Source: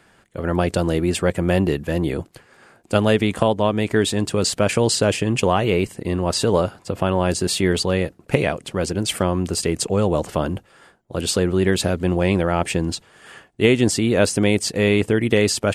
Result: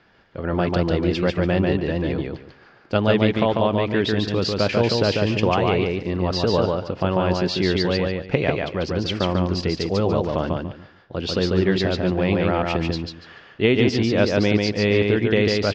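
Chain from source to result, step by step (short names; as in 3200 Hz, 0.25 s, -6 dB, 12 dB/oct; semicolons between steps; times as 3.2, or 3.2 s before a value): steep low-pass 5500 Hz 48 dB/oct; on a send: feedback echo 0.144 s, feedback 22%, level -3 dB; on the sum: gain -2.5 dB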